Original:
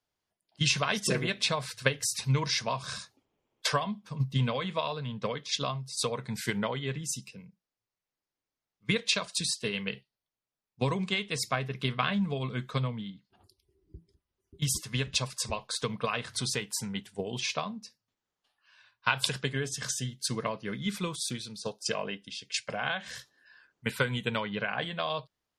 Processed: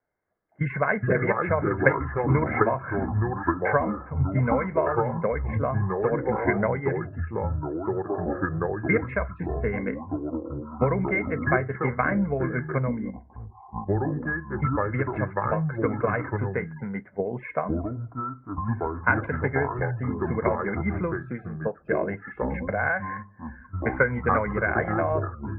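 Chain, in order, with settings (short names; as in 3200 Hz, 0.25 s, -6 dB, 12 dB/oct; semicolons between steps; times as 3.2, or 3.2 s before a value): rippled Chebyshev low-pass 2200 Hz, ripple 6 dB; echoes that change speed 0.262 s, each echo -4 st, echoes 3; gain +9 dB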